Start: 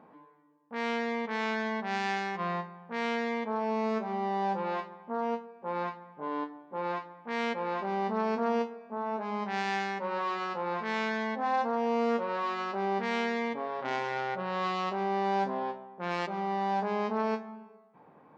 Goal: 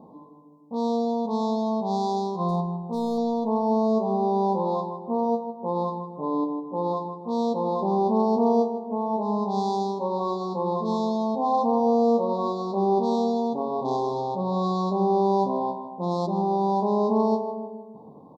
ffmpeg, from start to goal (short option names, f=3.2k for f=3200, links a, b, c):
-filter_complex "[0:a]lowshelf=f=430:g=10,asettb=1/sr,asplit=3[a][b][c];[a]atrim=end=2.484[d];[b]atrim=start=2.48:end=3.18,asetpts=PTS-STARTPTS,afade=t=in:d=0.004:c=qsin,afade=t=out:st=0.696:d=0.004:c=qsin,aeval=exprs='clip(val(0),-1,0.0891)':c=same[e];[c]atrim=start=3.176[f];[d][e]acrossfade=d=0.004:c1=hsin:c2=qsin[g];[g][f]acrossfade=d=0.004:c1=qsin:c2=hsin,asuperstop=centerf=2000:order=20:qfactor=0.81,asplit=2[h][i];[i]adelay=156,lowpass=f=1.4k:p=1,volume=-7dB,asplit=2[j][k];[k]adelay=156,lowpass=f=1.4k:p=1,volume=0.52,asplit=2[l][m];[m]adelay=156,lowpass=f=1.4k:p=1,volume=0.52,asplit=2[n][o];[o]adelay=156,lowpass=f=1.4k:p=1,volume=0.52,asplit=2[p][q];[q]adelay=156,lowpass=f=1.4k:p=1,volume=0.52,asplit=2[r][s];[s]adelay=156,lowpass=f=1.4k:p=1,volume=0.52[t];[h][j][l][n][p][r][t]amix=inputs=7:normalize=0,volume=3.5dB"